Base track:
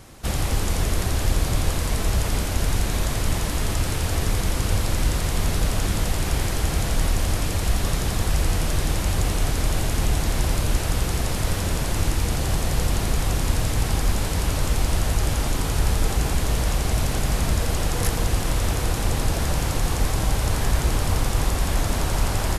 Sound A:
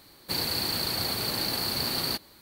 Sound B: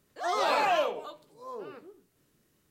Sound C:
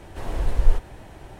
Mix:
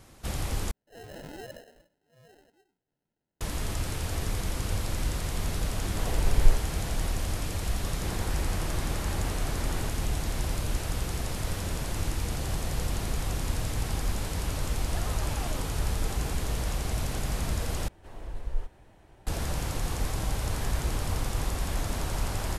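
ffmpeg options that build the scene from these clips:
ffmpeg -i bed.wav -i cue0.wav -i cue1.wav -i cue2.wav -filter_complex "[2:a]asplit=2[link_01][link_02];[3:a]asplit=2[link_03][link_04];[0:a]volume=-8dB[link_05];[link_01]acrusher=samples=38:mix=1:aa=0.000001[link_06];[1:a]lowpass=frequency=2100:width=0.5412,lowpass=frequency=2100:width=1.3066[link_07];[link_02]acompressor=threshold=-29dB:ratio=6:attack=3.2:release=140:knee=1:detection=peak[link_08];[link_05]asplit=3[link_09][link_10][link_11];[link_09]atrim=end=0.714[link_12];[link_06]atrim=end=2.7,asetpts=PTS-STARTPTS,volume=-16.5dB[link_13];[link_10]atrim=start=3.406:end=17.884[link_14];[link_04]atrim=end=1.39,asetpts=PTS-STARTPTS,volume=-13.5dB[link_15];[link_11]atrim=start=19.266[link_16];[link_03]atrim=end=1.39,asetpts=PTS-STARTPTS,volume=-2dB,afade=type=in:duration=0.004:curve=hsin,afade=type=out:start_time=1.386:duration=0.004:curve=hsin,adelay=5790[link_17];[link_07]atrim=end=2.41,asetpts=PTS-STARTPTS,volume=-4.5dB,afade=type=in:duration=0.004:curve=hsin,afade=type=out:start_time=2.406:duration=0.004:curve=hsin,adelay=7730[link_18];[link_08]atrim=end=2.7,asetpts=PTS-STARTPTS,volume=-10dB,afade=type=in:duration=0.004:curve=hsin,afade=type=out:start_time=2.696:duration=0.004:curve=hsin,adelay=14730[link_19];[link_12][link_13]acrossfade=duration=0.004:curve1=hsin:curve2=hsin[link_20];[link_20][link_14]acrossfade=duration=0.004:curve1=hsin:curve2=hsin[link_21];[link_21][link_15]acrossfade=duration=0.004:curve1=hsin:curve2=hsin[link_22];[link_22][link_16]acrossfade=duration=0.004:curve1=hsin:curve2=hsin[link_23];[link_23][link_17][link_18][link_19]amix=inputs=4:normalize=0" out.wav

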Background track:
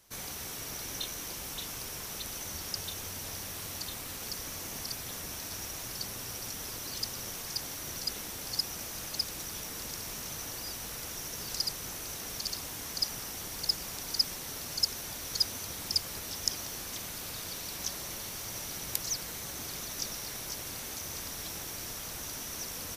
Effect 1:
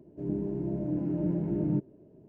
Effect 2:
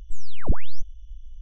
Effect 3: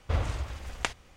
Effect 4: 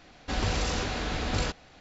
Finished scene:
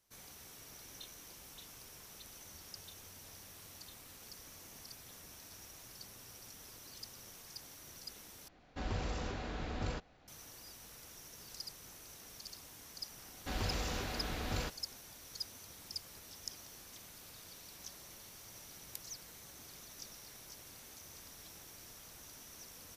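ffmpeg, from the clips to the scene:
ffmpeg -i bed.wav -i cue0.wav -i cue1.wav -i cue2.wav -i cue3.wav -filter_complex "[4:a]asplit=2[link_01][link_02];[0:a]volume=-14dB[link_03];[link_01]highshelf=frequency=2100:gain=-8[link_04];[link_03]asplit=2[link_05][link_06];[link_05]atrim=end=8.484[link_07];[link_04]atrim=end=1.8,asetpts=PTS-STARTPTS,volume=-9dB[link_08];[link_06]atrim=start=10.276[link_09];[link_02]atrim=end=1.8,asetpts=PTS-STARTPTS,volume=-9dB,afade=type=in:duration=0.004:curve=hsin,afade=type=out:start_time=1.796:duration=0.004:curve=hsin,adelay=13180[link_10];[link_07][link_08]acrossfade=duration=0.004:curve1=hsin:curve2=hsin[link_11];[link_11][link_09]acrossfade=duration=0.004:curve1=hsin:curve2=hsin[link_12];[link_12][link_10]amix=inputs=2:normalize=0" out.wav

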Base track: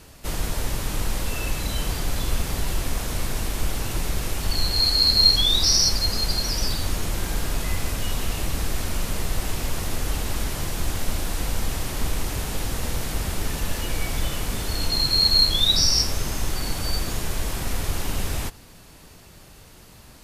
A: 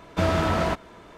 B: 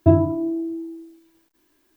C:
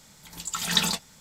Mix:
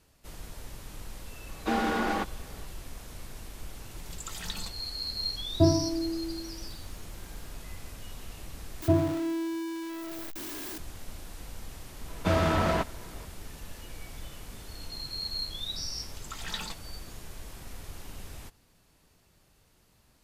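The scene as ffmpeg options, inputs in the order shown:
ffmpeg -i bed.wav -i cue0.wav -i cue1.wav -i cue2.wav -filter_complex "[1:a]asplit=2[link_01][link_02];[3:a]asplit=2[link_03][link_04];[2:a]asplit=2[link_05][link_06];[0:a]volume=-17dB[link_07];[link_01]afreqshift=140[link_08];[link_03]acompressor=threshold=-33dB:ratio=3:attack=39:release=155:knee=1:detection=peak[link_09];[link_06]aeval=exprs='val(0)+0.5*0.075*sgn(val(0))':channel_layout=same[link_10];[link_04]asplit=2[link_11][link_12];[link_12]highpass=frequency=720:poles=1,volume=11dB,asoftclip=type=tanh:threshold=-5dB[link_13];[link_11][link_13]amix=inputs=2:normalize=0,lowpass=frequency=2700:poles=1,volume=-6dB[link_14];[link_07]asplit=2[link_15][link_16];[link_15]atrim=end=8.824[link_17];[link_10]atrim=end=1.96,asetpts=PTS-STARTPTS,volume=-10dB[link_18];[link_16]atrim=start=10.776[link_19];[link_08]atrim=end=1.17,asetpts=PTS-STARTPTS,volume=-5.5dB,afade=type=in:duration=0.004:curve=hsin,afade=type=out:start_time=1.166:duration=0.004:curve=hsin,adelay=1490[link_20];[link_09]atrim=end=1.2,asetpts=PTS-STARTPTS,volume=-9dB,afade=type=in:duration=0.004:curve=hsin,afade=type=out:start_time=1.196:duration=0.004:curve=hsin,adelay=164493S[link_21];[link_05]atrim=end=1.96,asetpts=PTS-STARTPTS,volume=-7dB,afade=type=in:duration=0.004:curve=hsin,afade=type=out:start_time=1.956:duration=0.004:curve=hsin,adelay=5540[link_22];[link_02]atrim=end=1.17,asetpts=PTS-STARTPTS,volume=-2.5dB,afade=type=in:duration=0.004:curve=hsin,afade=type=out:start_time=1.166:duration=0.004:curve=hsin,adelay=12080[link_23];[link_14]atrim=end=1.2,asetpts=PTS-STARTPTS,volume=-14dB,afade=type=in:duration=0.004:curve=hsin,afade=type=out:start_time=1.196:duration=0.004:curve=hsin,adelay=15770[link_24];[link_17][link_18]acrossfade=duration=0.004:curve1=hsin:curve2=hsin[link_25];[link_25][link_19]acrossfade=duration=0.004:curve1=hsin:curve2=hsin[link_26];[link_26][link_20][link_21][link_22][link_23][link_24]amix=inputs=6:normalize=0" out.wav

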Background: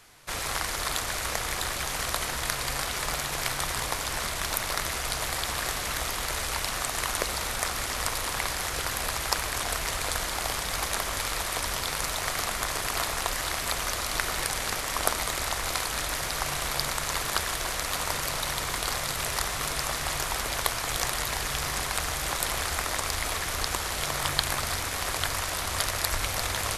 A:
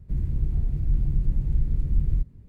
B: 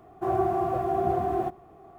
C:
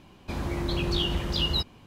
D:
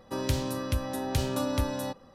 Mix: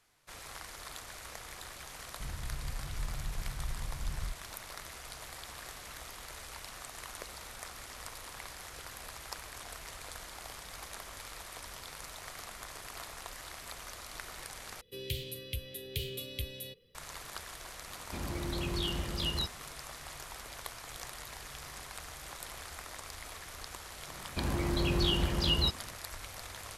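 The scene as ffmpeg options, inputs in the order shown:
ffmpeg -i bed.wav -i cue0.wav -i cue1.wav -i cue2.wav -i cue3.wav -filter_complex "[3:a]asplit=2[link_01][link_02];[0:a]volume=-16dB[link_03];[4:a]firequalizer=gain_entry='entry(130,0);entry(280,-14);entry(440,10);entry(680,-28);entry(1400,-17);entry(2100,5);entry(3200,13);entry(5700,-5);entry(13000,13)':delay=0.05:min_phase=1[link_04];[link_02]bandreject=frequency=3600:width=19[link_05];[link_03]asplit=2[link_06][link_07];[link_06]atrim=end=14.814[link_08];[link_04]atrim=end=2.14,asetpts=PTS-STARTPTS,volume=-10dB[link_09];[link_07]atrim=start=16.946[link_10];[1:a]atrim=end=2.48,asetpts=PTS-STARTPTS,volume=-15dB,afade=type=in:duration=0.004:curve=hsin,afade=type=out:start_time=2.476:duration=0.004:curve=hsin,adelay=2100[link_11];[link_01]atrim=end=1.86,asetpts=PTS-STARTPTS,volume=-7.5dB,afade=type=in:duration=0.004:curve=hsin,afade=type=out:start_time=1.856:duration=0.004:curve=hsin,adelay=17840[link_12];[link_05]atrim=end=1.86,asetpts=PTS-STARTPTS,volume=-2dB,afade=type=in:duration=0.004:curve=hsin,afade=type=out:start_time=1.856:duration=0.004:curve=hsin,adelay=24080[link_13];[link_08][link_09]acrossfade=duration=0.004:curve1=hsin:curve2=hsin[link_14];[link_14][link_10]acrossfade=duration=0.004:curve1=hsin:curve2=hsin[link_15];[link_15][link_11][link_12][link_13]amix=inputs=4:normalize=0" out.wav

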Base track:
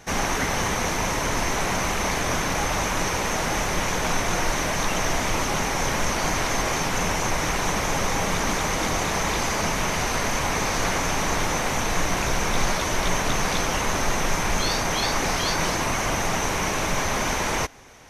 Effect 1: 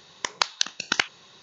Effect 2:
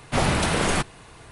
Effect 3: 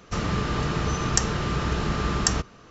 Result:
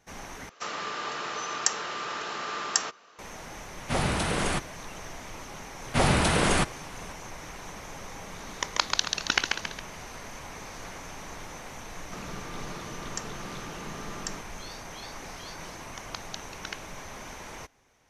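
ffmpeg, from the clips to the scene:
ffmpeg -i bed.wav -i cue0.wav -i cue1.wav -i cue2.wav -filter_complex "[3:a]asplit=2[link_01][link_02];[2:a]asplit=2[link_03][link_04];[1:a]asplit=2[link_05][link_06];[0:a]volume=-17.5dB[link_07];[link_01]highpass=620[link_08];[link_05]asplit=7[link_09][link_10][link_11][link_12][link_13][link_14][link_15];[link_10]adelay=137,afreqshift=56,volume=-4dB[link_16];[link_11]adelay=274,afreqshift=112,volume=-10.9dB[link_17];[link_12]adelay=411,afreqshift=168,volume=-17.9dB[link_18];[link_13]adelay=548,afreqshift=224,volume=-24.8dB[link_19];[link_14]adelay=685,afreqshift=280,volume=-31.7dB[link_20];[link_15]adelay=822,afreqshift=336,volume=-38.7dB[link_21];[link_09][link_16][link_17][link_18][link_19][link_20][link_21]amix=inputs=7:normalize=0[link_22];[link_02]highpass=frequency=140:width=0.5412,highpass=frequency=140:width=1.3066[link_23];[link_07]asplit=2[link_24][link_25];[link_24]atrim=end=0.494[link_26];[link_08]atrim=end=2.7,asetpts=PTS-STARTPTS,volume=-2dB[link_27];[link_25]atrim=start=3.186[link_28];[link_03]atrim=end=1.31,asetpts=PTS-STARTPTS,volume=-5.5dB,afade=type=in:duration=0.004:curve=hsin,afade=type=out:start_time=1.306:duration=0.004:curve=hsin,adelay=166257S[link_29];[link_04]atrim=end=1.31,asetpts=PTS-STARTPTS,volume=-1dB,afade=type=in:duration=0.004:curve=hsin,afade=type=out:start_time=1.306:duration=0.004:curve=hsin,adelay=5820[link_30];[link_22]atrim=end=1.42,asetpts=PTS-STARTPTS,volume=-2.5dB,afade=type=in:duration=0.004:curve=hsin,afade=type=out:start_time=1.416:duration=0.004:curve=hsin,adelay=8380[link_31];[link_23]atrim=end=2.7,asetpts=PTS-STARTPTS,volume=-13.5dB,afade=type=in:duration=0.004:curve=hsin,afade=type=out:start_time=2.696:duration=0.004:curve=hsin,adelay=12000[link_32];[link_06]atrim=end=1.42,asetpts=PTS-STARTPTS,volume=-16dB,afade=type=in:duration=0.004:curve=hsin,afade=type=out:start_time=1.416:duration=0.004:curve=hsin,adelay=15730[link_33];[link_26][link_27]acrossfade=duration=0.004:curve1=hsin:curve2=hsin[link_34];[link_34][link_28]acrossfade=duration=0.004:curve1=hsin:curve2=hsin[link_35];[link_35][link_29][link_30][link_31][link_32][link_33]amix=inputs=6:normalize=0" out.wav

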